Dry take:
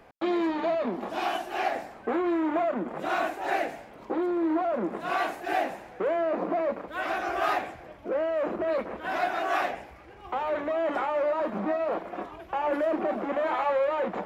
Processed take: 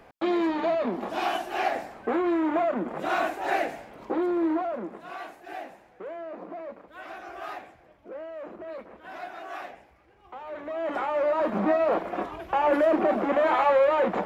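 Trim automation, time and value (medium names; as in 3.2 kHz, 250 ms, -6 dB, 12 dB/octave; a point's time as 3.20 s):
4.45 s +1.5 dB
5.12 s -11 dB
10.42 s -11 dB
10.90 s -1.5 dB
11.63 s +5 dB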